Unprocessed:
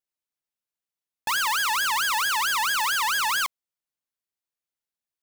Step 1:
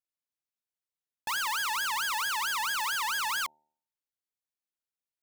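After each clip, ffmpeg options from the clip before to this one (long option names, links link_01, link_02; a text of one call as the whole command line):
ffmpeg -i in.wav -af "bandreject=frequency=75.49:width_type=h:width=4,bandreject=frequency=150.98:width_type=h:width=4,bandreject=frequency=226.47:width_type=h:width=4,bandreject=frequency=301.96:width_type=h:width=4,bandreject=frequency=377.45:width_type=h:width=4,bandreject=frequency=452.94:width_type=h:width=4,bandreject=frequency=528.43:width_type=h:width=4,bandreject=frequency=603.92:width_type=h:width=4,bandreject=frequency=679.41:width_type=h:width=4,bandreject=frequency=754.9:width_type=h:width=4,bandreject=frequency=830.39:width_type=h:width=4,bandreject=frequency=905.88:width_type=h:width=4,volume=-6.5dB" out.wav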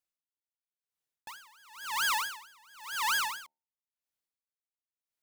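ffmpeg -i in.wav -af "aeval=exprs='val(0)*pow(10,-32*(0.5-0.5*cos(2*PI*0.96*n/s))/20)':channel_layout=same,volume=3dB" out.wav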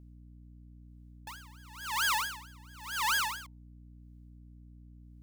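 ffmpeg -i in.wav -af "aeval=exprs='val(0)+0.00282*(sin(2*PI*60*n/s)+sin(2*PI*2*60*n/s)/2+sin(2*PI*3*60*n/s)/3+sin(2*PI*4*60*n/s)/4+sin(2*PI*5*60*n/s)/5)':channel_layout=same" out.wav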